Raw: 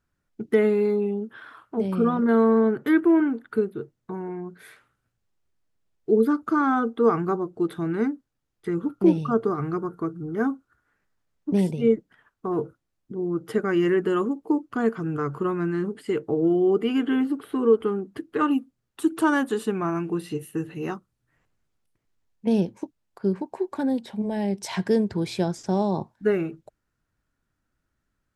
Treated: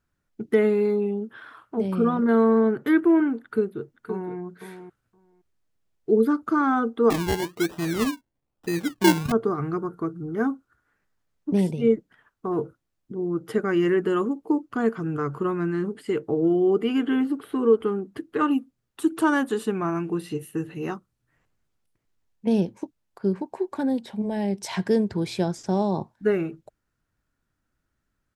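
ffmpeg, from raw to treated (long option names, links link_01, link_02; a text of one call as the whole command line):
ffmpeg -i in.wav -filter_complex "[0:a]asplit=2[link_01][link_02];[link_02]afade=type=in:start_time=3.42:duration=0.01,afade=type=out:start_time=4.37:duration=0.01,aecho=0:1:520|1040:0.334965|0.0334965[link_03];[link_01][link_03]amix=inputs=2:normalize=0,asettb=1/sr,asplit=3[link_04][link_05][link_06];[link_04]atrim=end=7.104[link_07];[link_05]atrim=start=7.1:end=9.32,asetpts=PTS-STARTPTS,afade=type=in:duration=0.004:curve=qsin,afade=type=out:start_time=2.216:duration=0.004:curve=qsin,acrusher=samples=28:mix=1:aa=0.000001:lfo=1:lforange=16.8:lforate=1.1[link_08];[link_06]atrim=start=9.316[link_09];[link_07][link_08]acrossfade=duration=0.004:curve1=hsin:curve2=qsin[link_10];[link_10][link_09]acrossfade=duration=0.004:curve1=qsin:curve2=hsin" out.wav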